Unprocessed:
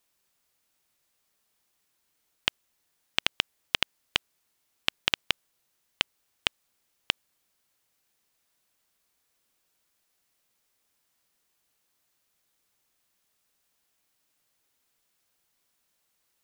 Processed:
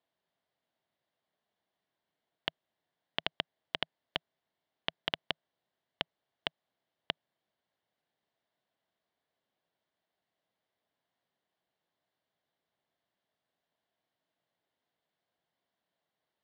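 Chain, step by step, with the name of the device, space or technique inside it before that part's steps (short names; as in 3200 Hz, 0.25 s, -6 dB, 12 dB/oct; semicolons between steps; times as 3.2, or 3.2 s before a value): guitar cabinet (speaker cabinet 100–3500 Hz, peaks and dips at 160 Hz +3 dB, 660 Hz +7 dB, 1300 Hz -6 dB, 2500 Hz -10 dB); gain -4 dB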